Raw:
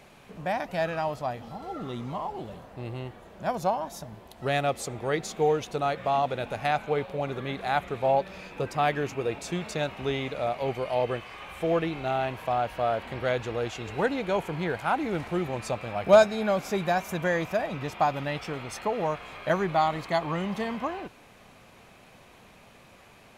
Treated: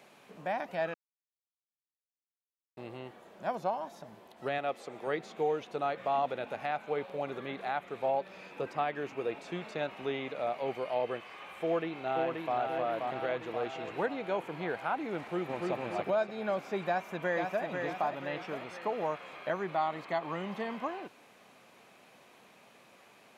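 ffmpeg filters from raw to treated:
-filter_complex "[0:a]asettb=1/sr,asplit=3[a][b][c];[a]atrim=end=4.584[d];[b]atrim=start=4.58:end=5.07,asetpts=PTS-STARTPTS,afade=t=in:d=0.004:c=qsin,afade=t=out:st=0.486:d=0.004:c=qsin,highpass=f=230:p=1[e];[c]atrim=start=5.066[f];[d][e]acrossfade=d=0.004:c1=hsin:c2=qsin[g];[g][f]acrossfade=d=0.004:c1=qsin:c2=hsin,asplit=2[h][i];[i]afade=t=in:st=11.62:d=0.01,afade=t=out:st=12.57:d=0.01,aecho=0:1:530|1060|1590|2120|2650|3180|3710|4240|4770:0.707946|0.424767|0.25486|0.152916|0.0917498|0.0550499|0.0330299|0.019818|0.0118908[j];[h][j]amix=inputs=2:normalize=0,asplit=2[k][l];[l]afade=t=in:st=15.2:d=0.01,afade=t=out:st=15.72:d=0.01,aecho=0:1:290|580|870|1160|1450|1740:0.841395|0.378628|0.170383|0.0766721|0.0345025|0.0155261[m];[k][m]amix=inputs=2:normalize=0,asplit=2[n][o];[o]afade=t=in:st=16.87:d=0.01,afade=t=out:st=17.66:d=0.01,aecho=0:1:490|980|1470|1960|2450|2940:0.562341|0.253054|0.113874|0.0512434|0.0230595|0.0103768[p];[n][p]amix=inputs=2:normalize=0,asplit=3[q][r][s];[q]atrim=end=0.94,asetpts=PTS-STARTPTS,afade=t=out:st=0.936:d=0.004:c=hsin[t];[r]atrim=start=0.94:end=2.77,asetpts=PTS-STARTPTS,volume=0[u];[s]atrim=start=2.77,asetpts=PTS-STARTPTS,afade=t=in:d=0.004:c=hsin[v];[t][u][v]concat=n=3:v=0:a=1,acrossover=split=3600[w][x];[x]acompressor=threshold=-57dB:ratio=4:attack=1:release=60[y];[w][y]amix=inputs=2:normalize=0,highpass=220,alimiter=limit=-16.5dB:level=0:latency=1:release=340,volume=-4.5dB"

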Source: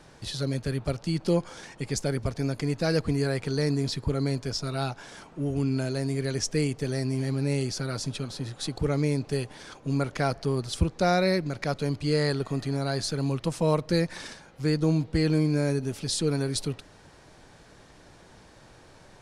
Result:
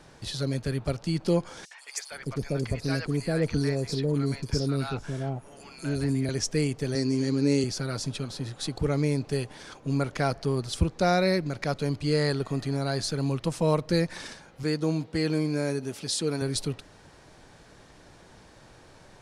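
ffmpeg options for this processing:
-filter_complex "[0:a]asettb=1/sr,asplit=3[a][b][c];[a]atrim=end=1.654[d];[b]atrim=start=1.65:end=6.29,asetpts=PTS-STARTPTS,afade=t=in:d=0.004:c=qsin,afade=t=out:st=4.636:d=0.004:c=qsin,acrossover=split=790|4400[e][f][g];[f]adelay=60[h];[e]adelay=460[i];[i][h][g]amix=inputs=3:normalize=0,atrim=end_sample=204624[j];[c]atrim=start=6.286[k];[d][j]acrossfade=d=0.004:c1=hsin:c2=qsin[l];[l][k]acrossfade=d=0.004:c1=qsin:c2=hsin,asettb=1/sr,asplit=3[m][n][o];[m]atrim=end=6.954[p];[n]atrim=start=6.95:end=7.64,asetpts=PTS-STARTPTS,afade=t=in:d=0.004:c=qsin,afade=t=out:st=0.686:d=0.004:c=qsin,highpass=130,equalizer=f=290:t=q:w=4:g=8,equalizer=f=460:t=q:w=4:g=7,equalizer=f=700:t=q:w=4:g=-9,equalizer=f=4.5k:t=q:w=4:g=6,equalizer=f=6.6k:t=q:w=4:g=10,lowpass=f=9.4k:w=0.5412,lowpass=f=9.4k:w=1.3066[q];[o]atrim=start=7.636[r];[p][q]acrossfade=d=0.004:c1=hsin:c2=qsin[s];[s][r]acrossfade=d=0.004:c1=qsin:c2=hsin,asettb=1/sr,asplit=3[t][u][v];[t]atrim=end=14.634[w];[u]atrim=start=14.63:end=16.42,asetpts=PTS-STARTPTS,afade=t=in:d=0.004:c=qsin,afade=t=out:st=1.786:d=0.004:c=qsin,highpass=f=240:p=1[x];[v]atrim=start=16.416[y];[w][x]acrossfade=d=0.004:c1=hsin:c2=qsin[z];[z][y]acrossfade=d=0.004:c1=qsin:c2=hsin"

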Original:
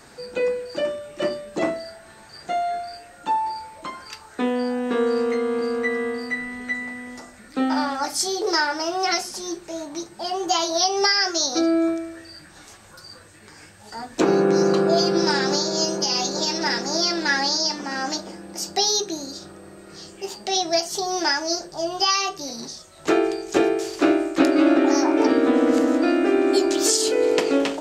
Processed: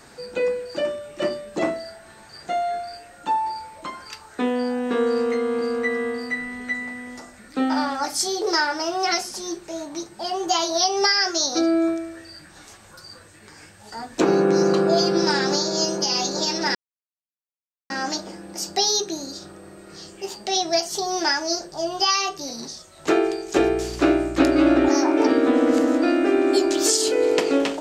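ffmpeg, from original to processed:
-filter_complex "[0:a]asettb=1/sr,asplit=3[a][b][c];[a]atrim=end=23.584[d];[b]atrim=start=23.58:end=24.89,asetpts=PTS-STARTPTS,afade=t=in:d=0.004:c=qsin,afade=t=out:st=1.306:d=0.004:c=qsin,aeval=exprs='val(0)+0.02*(sin(2*PI*60*n/s)+sin(2*PI*2*60*n/s)/2+sin(2*PI*3*60*n/s)/3+sin(2*PI*4*60*n/s)/4+sin(2*PI*5*60*n/s)/5)':c=same[e];[c]atrim=start=24.886[f];[d][e]acrossfade=d=0.004:c1=hsin:c2=qsin[g];[g][f]acrossfade=d=0.004:c1=qsin:c2=hsin,asplit=3[h][i][j];[h]atrim=end=16.75,asetpts=PTS-STARTPTS,afade=t=out:st=16.746:d=0.004:c=hsin[k];[i]atrim=start=16.75:end=17.9,asetpts=PTS-STARTPTS,volume=0[l];[j]atrim=start=17.9,asetpts=PTS-STARTPTS,afade=t=in:d=0.004:c=hsin[m];[k][l][m]concat=n=3:v=0:a=1"

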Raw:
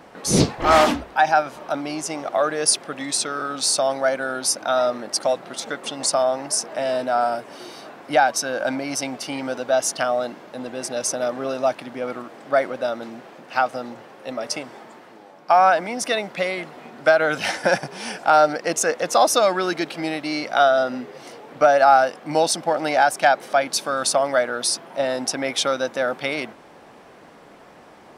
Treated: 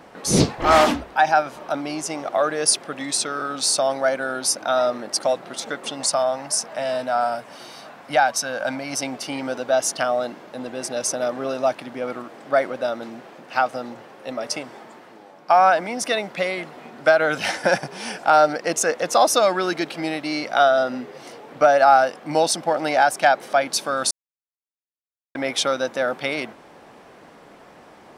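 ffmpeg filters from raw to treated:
-filter_complex "[0:a]asettb=1/sr,asplit=3[a][b][c];[a]atrim=end=6.014[d];[b]atrim=start=6.01:end=8.93,asetpts=PTS-STARTPTS,afade=t=in:d=0.004:c=qsin,afade=t=out:st=2.916:d=0.004:c=qsin,equalizer=f=360:w=2.1:g=-9.5[e];[c]atrim=start=8.926[f];[d][e]acrossfade=d=0.004:c1=hsin:c2=qsin[g];[g][f]acrossfade=d=0.004:c1=qsin:c2=hsin,asplit=3[h][i][j];[h]atrim=end=24.11,asetpts=PTS-STARTPTS,afade=t=out:st=24.106:d=0.004:c=hsin[k];[i]atrim=start=24.11:end=25.35,asetpts=PTS-STARTPTS,volume=0[l];[j]atrim=start=25.35,asetpts=PTS-STARTPTS,afade=t=in:d=0.004:c=hsin[m];[k][l][m]concat=n=3:v=0:a=1"

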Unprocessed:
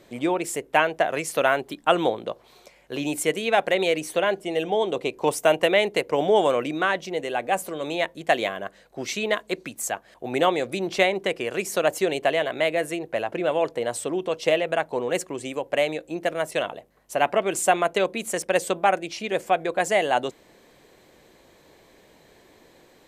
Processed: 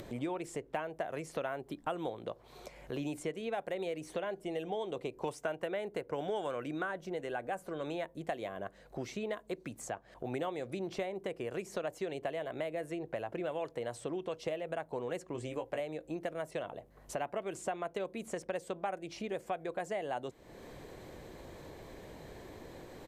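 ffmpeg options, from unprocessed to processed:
-filter_complex "[0:a]asettb=1/sr,asplit=3[a][b][c];[a]atrim=end=5.414[d];[b]atrim=start=5.41:end=8.04,asetpts=PTS-STARTPTS,afade=t=in:d=0.004:c=qsin,afade=t=out:st=2.626:d=0.004:c=qsin,equalizer=f=1.5k:w=3.8:g=8[e];[c]atrim=start=8.036[f];[d][e]acrossfade=d=0.004:c1=hsin:c2=qsin[g];[g][f]acrossfade=d=0.004:c1=qsin:c2=hsin,asettb=1/sr,asplit=3[h][i][j];[h]atrim=end=15.334[k];[i]atrim=start=15.33:end=15.8,asetpts=PTS-STARTPTS,afade=t=in:d=0.004:c=qsin,afade=t=out:st=0.466:d=0.004:c=qsin,asplit=2[l][m];[m]adelay=17,volume=-4.5dB[n];[l][n]amix=inputs=2:normalize=0,atrim=end_sample=20727[o];[j]atrim=start=15.796[p];[k][o]acrossfade=d=0.004:c1=hsin:c2=qsin[q];[q][p]acrossfade=d=0.004:c1=qsin:c2=hsin,acrossover=split=1200|7800[r][s][t];[r]acompressor=threshold=-30dB:ratio=4[u];[s]acompressor=threshold=-37dB:ratio=4[v];[t]acompressor=threshold=-54dB:ratio=4[w];[u][v][w]amix=inputs=3:normalize=0,firequalizer=gain_entry='entry(110,0);entry(190,-6);entry(2600,-13)':delay=0.05:min_phase=1,acompressor=mode=upward:threshold=-39dB:ratio=2.5,volume=1dB"

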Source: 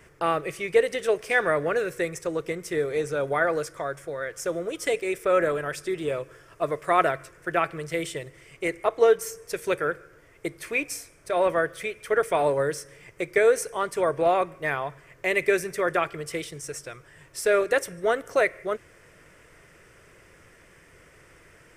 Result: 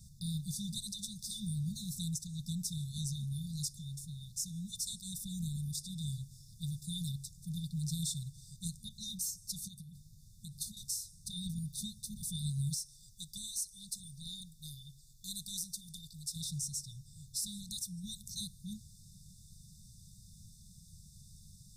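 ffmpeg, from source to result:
-filter_complex "[0:a]asettb=1/sr,asplit=3[a][b][c];[a]atrim=end=9.584[d];[b]atrim=start=9.58:end=10.77,asetpts=PTS-STARTPTS,afade=t=in:d=0.004:c=qsin,afade=t=out:st=1.186:d=0.004:c=qsin,acompressor=threshold=-32dB:ratio=12:attack=3.2:release=140:knee=1:detection=peak[e];[c]atrim=start=10.766[f];[d][e]acrossfade=d=0.004:c1=hsin:c2=qsin[g];[g][f]acrossfade=d=0.004:c1=qsin:c2=hsin,asettb=1/sr,asplit=3[h][i][j];[h]atrim=end=12.744[k];[i]atrim=start=12.74:end=16.36,asetpts=PTS-STARTPTS,afade=t=in:d=0.004:c=qsin,afade=t=out:st=3.616:d=0.004:c=qsin,equalizer=f=150:w=0.53:g=-12.5[l];[j]atrim=start=16.356[m];[k][l]acrossfade=d=0.004:c1=hsin:c2=qsin[n];[n][m]acrossfade=d=0.004:c1=qsin:c2=hsin,afftfilt=real='re*(1-between(b*sr/4096,220,3500))':imag='im*(1-between(b*sr/4096,220,3500))':win_size=4096:overlap=0.75,alimiter=level_in=5dB:limit=-24dB:level=0:latency=1:release=330,volume=-5dB,volume=3.5dB"

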